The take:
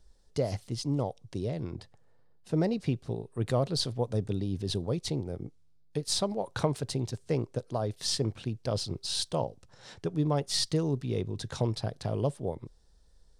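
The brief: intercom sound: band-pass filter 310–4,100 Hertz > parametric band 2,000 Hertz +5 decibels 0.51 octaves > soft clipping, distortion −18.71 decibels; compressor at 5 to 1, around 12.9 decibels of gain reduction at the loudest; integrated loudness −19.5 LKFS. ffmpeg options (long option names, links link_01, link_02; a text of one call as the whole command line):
ffmpeg -i in.wav -af "acompressor=threshold=-38dB:ratio=5,highpass=310,lowpass=4100,equalizer=frequency=2000:width_type=o:width=0.51:gain=5,asoftclip=threshold=-33.5dB,volume=27.5dB" out.wav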